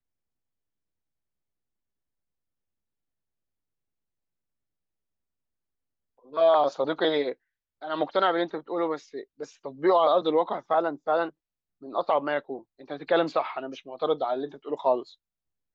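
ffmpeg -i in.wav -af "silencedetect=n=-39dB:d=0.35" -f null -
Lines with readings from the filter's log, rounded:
silence_start: 0.00
silence_end: 6.33 | silence_duration: 6.33
silence_start: 7.33
silence_end: 7.82 | silence_duration: 0.49
silence_start: 11.30
silence_end: 11.83 | silence_duration: 0.53
silence_start: 15.10
silence_end: 15.74 | silence_duration: 0.65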